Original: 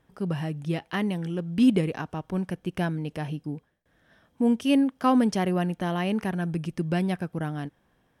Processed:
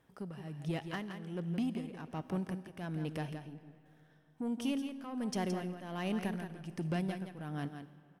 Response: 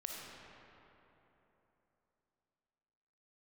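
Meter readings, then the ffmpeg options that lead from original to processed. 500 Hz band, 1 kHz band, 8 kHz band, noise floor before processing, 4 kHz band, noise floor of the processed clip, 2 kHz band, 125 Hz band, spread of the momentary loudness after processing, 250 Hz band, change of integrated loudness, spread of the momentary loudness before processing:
-11.5 dB, -13.0 dB, -7.0 dB, -68 dBFS, -10.0 dB, -65 dBFS, -10.5 dB, -10.0 dB, 8 LU, -12.5 dB, -12.0 dB, 11 LU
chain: -filter_complex "[0:a]highpass=f=87:p=1,acompressor=threshold=-26dB:ratio=6,asoftclip=type=tanh:threshold=-24dB,tremolo=f=1.3:d=0.78,aecho=1:1:169:0.398,asplit=2[a][b];[1:a]atrim=start_sample=2205,highshelf=f=4k:g=11[c];[b][c]afir=irnorm=-1:irlink=0,volume=-14dB[d];[a][d]amix=inputs=2:normalize=0,volume=-4dB"

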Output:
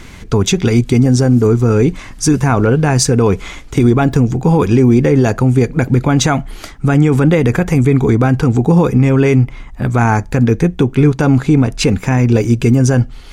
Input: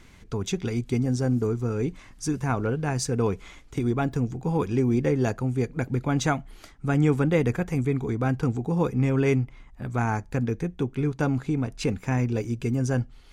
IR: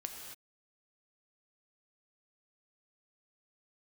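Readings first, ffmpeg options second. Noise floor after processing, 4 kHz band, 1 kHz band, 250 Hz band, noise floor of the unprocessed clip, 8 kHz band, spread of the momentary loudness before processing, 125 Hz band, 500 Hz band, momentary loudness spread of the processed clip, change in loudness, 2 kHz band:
-33 dBFS, +16.0 dB, +12.5 dB, +14.0 dB, -50 dBFS, +16.0 dB, 7 LU, +14.0 dB, +13.0 dB, 5 LU, +14.0 dB, +12.5 dB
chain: -af "alimiter=level_in=18dB:limit=-1dB:release=50:level=0:latency=1,volume=-1dB"

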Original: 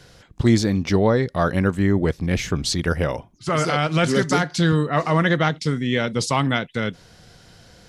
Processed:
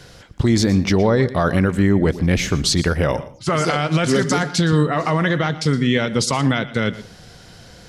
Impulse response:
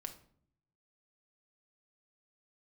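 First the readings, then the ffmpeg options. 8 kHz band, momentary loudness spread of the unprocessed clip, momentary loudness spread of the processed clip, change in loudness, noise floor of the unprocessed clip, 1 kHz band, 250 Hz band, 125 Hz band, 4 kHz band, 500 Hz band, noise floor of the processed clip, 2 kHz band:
+5.0 dB, 6 LU, 6 LU, +2.5 dB, -51 dBFS, +1.0 dB, +3.0 dB, +2.5 dB, +3.5 dB, +2.0 dB, -44 dBFS, +1.5 dB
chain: -filter_complex "[0:a]alimiter=limit=-13dB:level=0:latency=1:release=65,asplit=2[a][b];[1:a]atrim=start_sample=2205,atrim=end_sample=6615,adelay=117[c];[b][c]afir=irnorm=-1:irlink=0,volume=-12.5dB[d];[a][d]amix=inputs=2:normalize=0,volume=5.5dB"

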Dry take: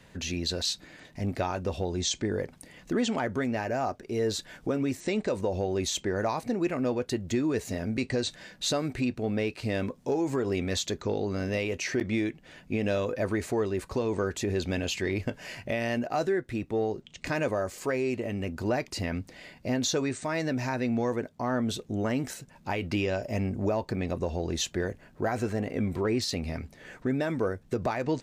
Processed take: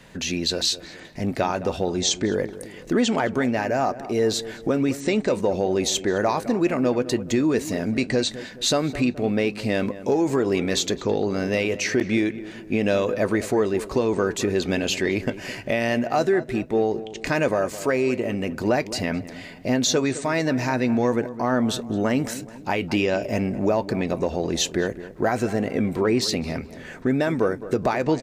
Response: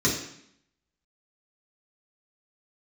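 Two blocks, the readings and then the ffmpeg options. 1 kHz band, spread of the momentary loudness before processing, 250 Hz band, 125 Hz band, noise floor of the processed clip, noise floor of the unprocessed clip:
+7.0 dB, 6 LU, +7.0 dB, +3.5 dB, -41 dBFS, -56 dBFS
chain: -filter_complex "[0:a]equalizer=f=87:t=o:w=0.53:g=-11,asplit=2[a][b];[b]adelay=212,lowpass=f=1.6k:p=1,volume=-14dB,asplit=2[c][d];[d]adelay=212,lowpass=f=1.6k:p=1,volume=0.48,asplit=2[e][f];[f]adelay=212,lowpass=f=1.6k:p=1,volume=0.48,asplit=2[g][h];[h]adelay=212,lowpass=f=1.6k:p=1,volume=0.48,asplit=2[i][j];[j]adelay=212,lowpass=f=1.6k:p=1,volume=0.48[k];[c][e][g][i][k]amix=inputs=5:normalize=0[l];[a][l]amix=inputs=2:normalize=0,volume=7dB"

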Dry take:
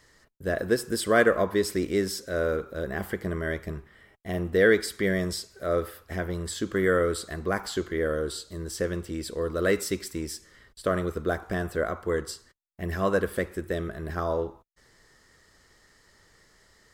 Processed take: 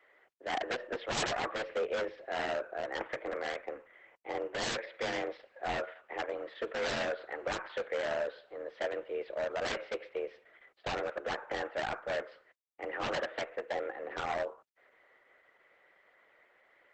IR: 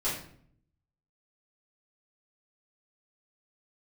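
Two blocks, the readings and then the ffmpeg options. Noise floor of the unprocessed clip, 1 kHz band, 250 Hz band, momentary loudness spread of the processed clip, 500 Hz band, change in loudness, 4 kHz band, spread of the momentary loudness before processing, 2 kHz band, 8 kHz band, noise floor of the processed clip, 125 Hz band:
-61 dBFS, -3.0 dB, -16.0 dB, 7 LU, -9.0 dB, -8.5 dB, -3.0 dB, 12 LU, -7.0 dB, -11.0 dB, -68 dBFS, -19.0 dB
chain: -af "highpass=f=240:t=q:w=0.5412,highpass=f=240:t=q:w=1.307,lowpass=f=2.8k:t=q:w=0.5176,lowpass=f=2.8k:t=q:w=0.7071,lowpass=f=2.8k:t=q:w=1.932,afreqshift=130,aeval=exprs='0.0596*(abs(mod(val(0)/0.0596+3,4)-2)-1)':c=same,volume=-2dB" -ar 48000 -c:a libopus -b:a 10k

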